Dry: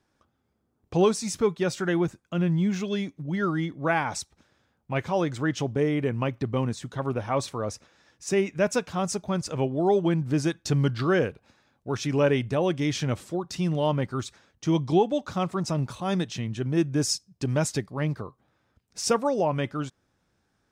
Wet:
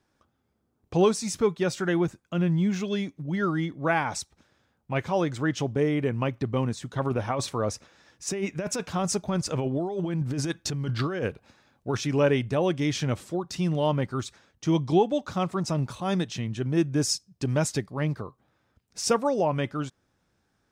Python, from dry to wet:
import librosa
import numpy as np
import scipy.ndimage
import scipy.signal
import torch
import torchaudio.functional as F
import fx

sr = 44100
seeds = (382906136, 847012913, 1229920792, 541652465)

y = fx.over_compress(x, sr, threshold_db=-27.0, ratio=-1.0, at=(6.96, 12.01))